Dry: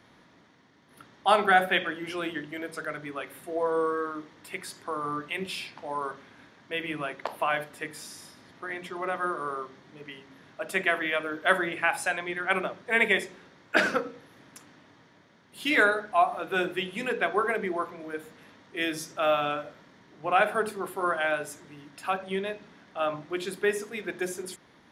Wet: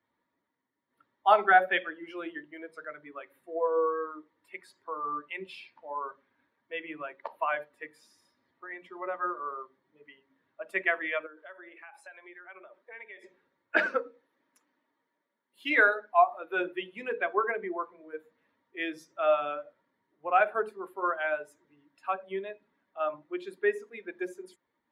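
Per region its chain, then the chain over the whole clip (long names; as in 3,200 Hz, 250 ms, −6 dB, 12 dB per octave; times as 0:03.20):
0:11.26–0:13.24: high-pass filter 270 Hz + downward compressor 4 to 1, threshold −37 dBFS
0:13.86–0:16.61: high-pass filter 180 Hz + high-shelf EQ 7,700 Hz +4 dB
whole clip: spectral dynamics exaggerated over time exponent 1.5; three-way crossover with the lows and the highs turned down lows −22 dB, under 310 Hz, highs −20 dB, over 2,700 Hz; level +2.5 dB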